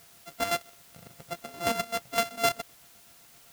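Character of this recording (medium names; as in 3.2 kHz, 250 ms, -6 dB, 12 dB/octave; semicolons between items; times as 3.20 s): a buzz of ramps at a fixed pitch in blocks of 64 samples; chopped level 7.8 Hz, depth 60%, duty 40%; a quantiser's noise floor 10-bit, dither triangular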